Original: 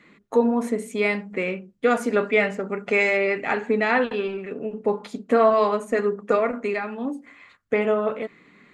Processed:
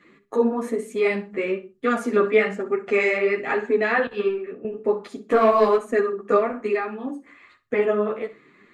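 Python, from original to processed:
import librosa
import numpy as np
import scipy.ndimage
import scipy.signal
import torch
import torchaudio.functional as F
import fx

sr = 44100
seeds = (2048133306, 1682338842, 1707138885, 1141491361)

y = fx.leveller(x, sr, passes=1, at=(5.3, 5.78))
y = fx.small_body(y, sr, hz=(370.0, 1200.0, 1700.0), ring_ms=30, db=8)
y = fx.chorus_voices(y, sr, voices=2, hz=1.1, base_ms=11, depth_ms=3.7, mix_pct=50)
y = fx.echo_feedback(y, sr, ms=62, feedback_pct=22, wet_db=-15.5)
y = fx.band_widen(y, sr, depth_pct=100, at=(4.07, 4.65))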